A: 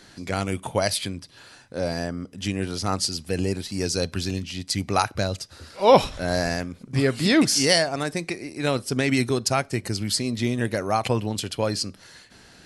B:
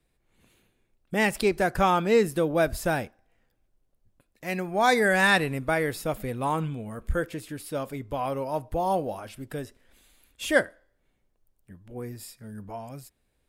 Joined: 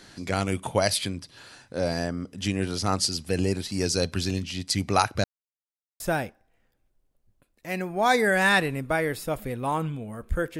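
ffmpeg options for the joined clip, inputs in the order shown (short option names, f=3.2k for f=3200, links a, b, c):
-filter_complex "[0:a]apad=whole_dur=10.59,atrim=end=10.59,asplit=2[a][b];[a]atrim=end=5.24,asetpts=PTS-STARTPTS,afade=t=out:st=5.236:d=0.004:c=hsin[c];[b]atrim=start=5.24:end=6,asetpts=PTS-STARTPTS,volume=0[d];[1:a]atrim=start=2.78:end=7.37,asetpts=PTS-STARTPTS,afade=t=in:d=0.004:c=hsin[e];[c][d][e]concat=n=3:v=0:a=1"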